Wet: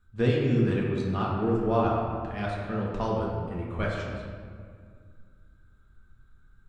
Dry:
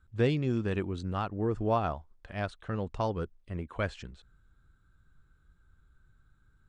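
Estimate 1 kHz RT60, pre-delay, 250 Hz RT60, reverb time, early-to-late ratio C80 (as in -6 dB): 1.9 s, 4 ms, 2.7 s, 2.0 s, 2.0 dB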